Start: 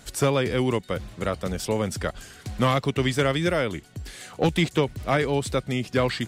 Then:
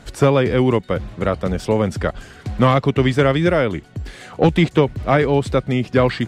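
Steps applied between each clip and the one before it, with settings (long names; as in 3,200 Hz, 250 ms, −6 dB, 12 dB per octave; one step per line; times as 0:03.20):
low-pass filter 1,800 Hz 6 dB per octave
level +8 dB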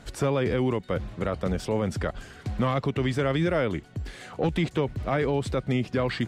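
brickwall limiter −11.5 dBFS, peak gain reduction 7.5 dB
level −5 dB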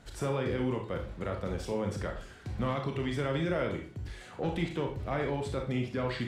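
convolution reverb RT60 0.40 s, pre-delay 22 ms, DRR 2 dB
level −8 dB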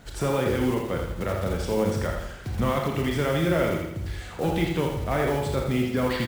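one scale factor per block 5 bits
repeating echo 83 ms, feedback 48%, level −6 dB
level +6.5 dB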